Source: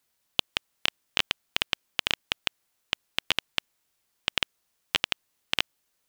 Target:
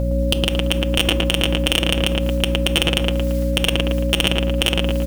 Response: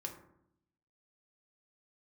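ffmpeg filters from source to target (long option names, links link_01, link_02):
-filter_complex "[0:a]equalizer=frequency=180:width=0.79:gain=-14.5,atempo=1.2,dynaudnorm=framelen=110:gausssize=3:maxgain=12dB,aeval=exprs='(tanh(10*val(0)+0.5)-tanh(0.5))/10':channel_layout=same,aeval=exprs='val(0)+0.00398*sin(2*PI*550*n/s)':channel_layout=same,aecho=1:1:6.2:0.5,aeval=exprs='val(0)+0.00708*(sin(2*PI*60*n/s)+sin(2*PI*2*60*n/s)/2+sin(2*PI*3*60*n/s)/3+sin(2*PI*4*60*n/s)/4+sin(2*PI*5*60*n/s)/5)':channel_layout=same,asplit=2[link_01][link_02];[link_02]adelay=113,lowpass=frequency=2200:poles=1,volume=-5dB,asplit=2[link_03][link_04];[link_04]adelay=113,lowpass=frequency=2200:poles=1,volume=0.46,asplit=2[link_05][link_06];[link_06]adelay=113,lowpass=frequency=2200:poles=1,volume=0.46,asplit=2[link_07][link_08];[link_08]adelay=113,lowpass=frequency=2200:poles=1,volume=0.46,asplit=2[link_09][link_10];[link_10]adelay=113,lowpass=frequency=2200:poles=1,volume=0.46,asplit=2[link_11][link_12];[link_12]adelay=113,lowpass=frequency=2200:poles=1,volume=0.46[link_13];[link_01][link_03][link_05][link_07][link_09][link_11][link_13]amix=inputs=7:normalize=0,asplit=2[link_14][link_15];[1:a]atrim=start_sample=2205[link_16];[link_15][link_16]afir=irnorm=-1:irlink=0,volume=-7dB[link_17];[link_14][link_17]amix=inputs=2:normalize=0,alimiter=level_in=23dB:limit=-1dB:release=50:level=0:latency=1,volume=-1dB"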